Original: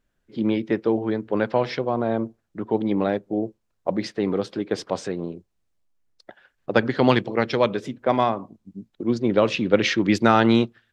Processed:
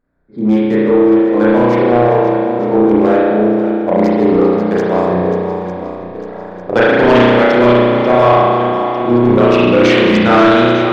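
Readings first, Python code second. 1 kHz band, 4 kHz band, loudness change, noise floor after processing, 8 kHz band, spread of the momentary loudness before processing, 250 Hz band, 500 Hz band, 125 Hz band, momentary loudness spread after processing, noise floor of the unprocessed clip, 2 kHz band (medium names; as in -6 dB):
+12.0 dB, +8.5 dB, +12.0 dB, -28 dBFS, no reading, 13 LU, +12.0 dB, +13.0 dB, +10.5 dB, 10 LU, -73 dBFS, +11.5 dB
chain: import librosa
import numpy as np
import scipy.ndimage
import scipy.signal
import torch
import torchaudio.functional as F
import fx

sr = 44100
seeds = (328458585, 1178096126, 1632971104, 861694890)

p1 = fx.wiener(x, sr, points=15)
p2 = fx.rev_spring(p1, sr, rt60_s=1.9, pass_ms=(33,), chirp_ms=50, drr_db=-9.0)
p3 = fx.rider(p2, sr, range_db=10, speed_s=2.0)
p4 = p2 + (p3 * 10.0 ** (-1.0 / 20.0))
p5 = fx.low_shelf(p4, sr, hz=150.0, db=-5.0)
p6 = p5 + fx.echo_swing(p5, sr, ms=900, ratio=1.5, feedback_pct=45, wet_db=-11.5, dry=0)
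p7 = 10.0 ** (-1.0 / 20.0) * np.tanh(p6 / 10.0 ** (-1.0 / 20.0))
y = p7 * 10.0 ** (-1.0 / 20.0)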